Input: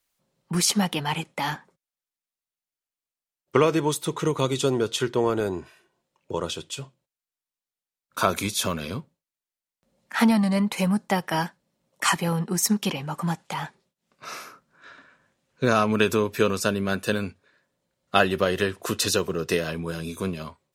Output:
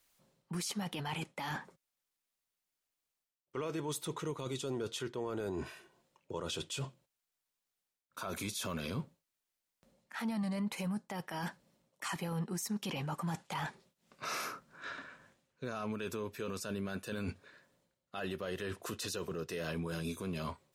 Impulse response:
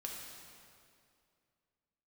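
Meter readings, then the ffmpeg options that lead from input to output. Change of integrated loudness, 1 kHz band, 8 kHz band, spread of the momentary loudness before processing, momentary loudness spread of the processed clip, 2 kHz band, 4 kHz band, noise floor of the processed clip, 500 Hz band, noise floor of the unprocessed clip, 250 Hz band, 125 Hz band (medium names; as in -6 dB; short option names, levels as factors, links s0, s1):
-15.0 dB, -15.0 dB, -14.5 dB, 13 LU, 8 LU, -14.0 dB, -13.5 dB, under -85 dBFS, -15.5 dB, under -85 dBFS, -13.5 dB, -11.5 dB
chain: -af "areverse,acompressor=threshold=0.0158:ratio=10,areverse,alimiter=level_in=2.82:limit=0.0631:level=0:latency=1:release=11,volume=0.355,volume=1.5"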